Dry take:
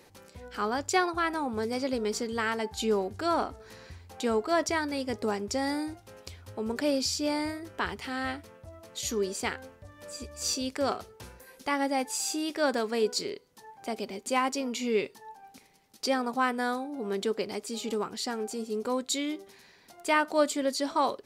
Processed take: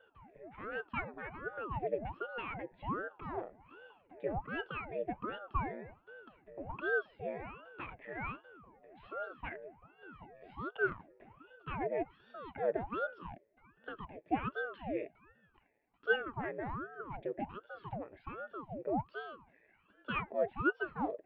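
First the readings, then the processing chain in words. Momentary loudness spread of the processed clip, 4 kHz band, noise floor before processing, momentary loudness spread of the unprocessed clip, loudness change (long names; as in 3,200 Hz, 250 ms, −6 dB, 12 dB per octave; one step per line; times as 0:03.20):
20 LU, −20.0 dB, −57 dBFS, 15 LU, −9.0 dB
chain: formant resonators in series e
ring modulator whose carrier an LFO sweeps 540 Hz, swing 90%, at 1.3 Hz
level +3.5 dB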